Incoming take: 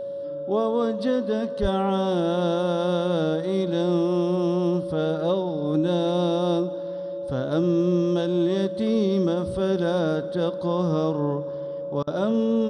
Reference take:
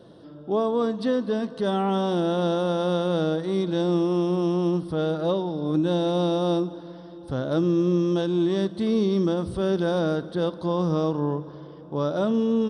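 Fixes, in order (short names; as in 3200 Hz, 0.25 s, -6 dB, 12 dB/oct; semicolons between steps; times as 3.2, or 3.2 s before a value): notch 560 Hz, Q 30; 1.61–1.73 HPF 140 Hz 24 dB/oct; interpolate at 12.03, 41 ms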